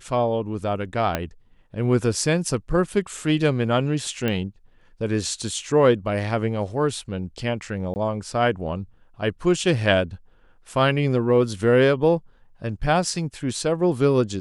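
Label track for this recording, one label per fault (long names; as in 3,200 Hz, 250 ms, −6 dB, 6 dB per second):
1.150000	1.150000	click −8 dBFS
4.280000	4.280000	click −12 dBFS
7.940000	7.960000	drop-out 19 ms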